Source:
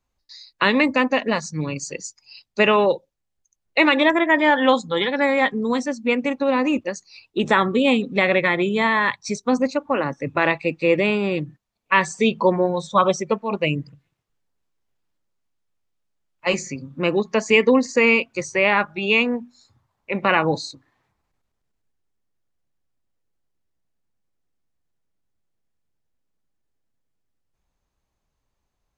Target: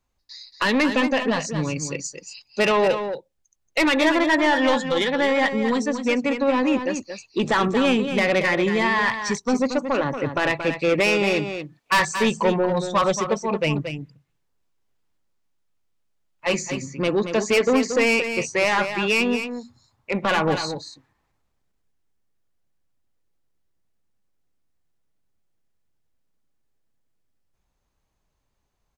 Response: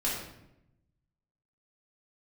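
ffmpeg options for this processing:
-filter_complex "[0:a]asettb=1/sr,asplit=3[link_01][link_02][link_03];[link_01]atrim=end=11.004[link_04];[link_02]atrim=start=11:end=12.05,asetpts=PTS-STARTPTS,afade=type=in:duration=0.004:curve=qsin,afade=type=out:start_time=1.046:duration=0.004:curve=qsin,asplit=2[link_05][link_06];[link_06]highpass=frequency=720:poles=1,volume=12dB,asoftclip=type=tanh:threshold=-3dB[link_07];[link_05][link_07]amix=inputs=2:normalize=0,lowpass=frequency=7200:poles=1,volume=-6dB[link_08];[link_03]atrim=start=12.046[link_09];[link_04][link_08]acrossfade=duration=0.004:curve1=hsin:curve2=qsin[link_10];[link_10][link_09]acrossfade=duration=0.004:curve1=qsin:curve2=hsin,asoftclip=type=tanh:threshold=-15.5dB,aecho=1:1:229:0.376,volume=1.5dB"

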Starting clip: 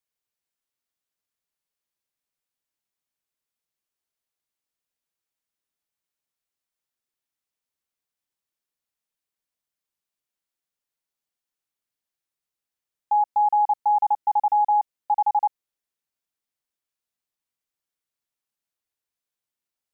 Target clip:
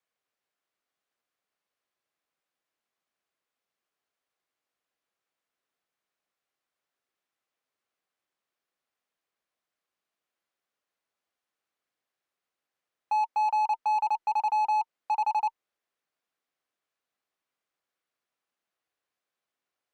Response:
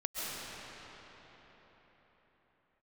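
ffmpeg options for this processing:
-filter_complex "[0:a]bandreject=frequency=890:width=13,afreqshift=20,asplit=2[link_01][link_02];[link_02]highpass=frequency=720:poles=1,volume=21dB,asoftclip=type=tanh:threshold=-16dB[link_03];[link_01][link_03]amix=inputs=2:normalize=0,lowpass=frequency=1000:poles=1,volume=-6dB,volume=-3dB"

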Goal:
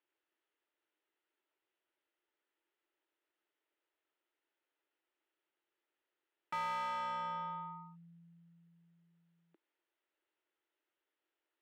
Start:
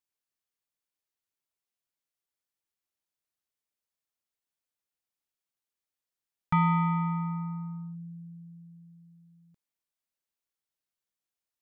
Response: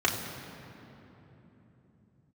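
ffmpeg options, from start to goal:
-filter_complex "[0:a]highpass=frequency=330:width=0.5412,highpass=frequency=330:width=1.3066,equalizer=frequency=330:width_type=q:width=4:gain=8,equalizer=frequency=510:width_type=q:width=4:gain=-5,equalizer=frequency=730:width_type=q:width=4:gain=-9,equalizer=frequency=1100:width_type=q:width=4:gain=-10,equalizer=frequency=1600:width_type=q:width=4:gain=-4,equalizer=frequency=2300:width_type=q:width=4:gain=-6,lowpass=frequency=3000:width=0.5412,lowpass=frequency=3000:width=1.3066,asplit=2[link_01][link_02];[link_02]highpass=frequency=720:poles=1,volume=30dB,asoftclip=type=tanh:threshold=-24dB[link_03];[link_01][link_03]amix=inputs=2:normalize=0,lowpass=frequency=1100:poles=1,volume=-6dB,volume=-5dB"

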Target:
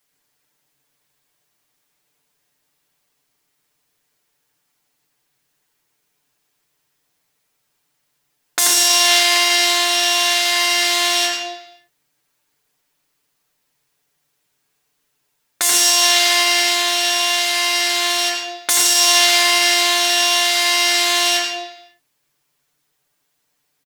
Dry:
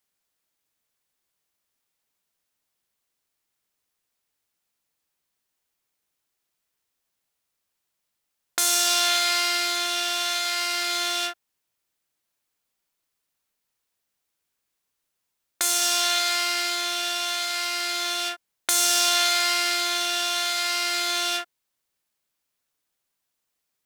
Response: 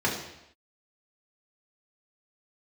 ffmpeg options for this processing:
-filter_complex "[0:a]aecho=1:1:6.8:0.78,asplit=2[link_01][link_02];[1:a]atrim=start_sample=2205,adelay=84[link_03];[link_02][link_03]afir=irnorm=-1:irlink=0,volume=-13dB[link_04];[link_01][link_04]amix=inputs=2:normalize=0,alimiter=level_in=9dB:limit=-1dB:release=50:level=0:latency=1,volume=-2dB"

